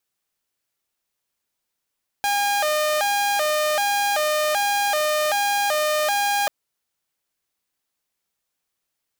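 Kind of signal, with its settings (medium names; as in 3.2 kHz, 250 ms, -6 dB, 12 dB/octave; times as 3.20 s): siren hi-lo 608–812 Hz 1.3 per s saw -16.5 dBFS 4.24 s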